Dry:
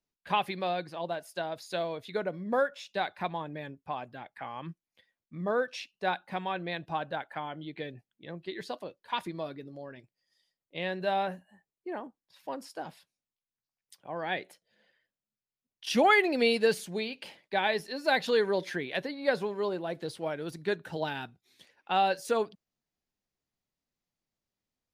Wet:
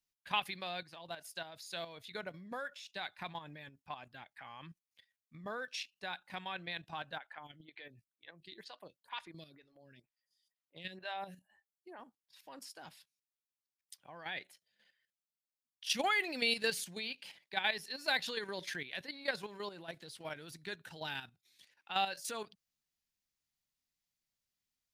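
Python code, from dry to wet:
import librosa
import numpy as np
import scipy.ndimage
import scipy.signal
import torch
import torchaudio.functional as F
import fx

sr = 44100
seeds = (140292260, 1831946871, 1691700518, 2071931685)

y = fx.stagger_phaser(x, sr, hz=2.1, at=(7.17, 11.98), fade=0.02)
y = fx.tone_stack(y, sr, knobs='5-5-5')
y = fx.level_steps(y, sr, step_db=10)
y = F.gain(torch.from_numpy(y), 9.5).numpy()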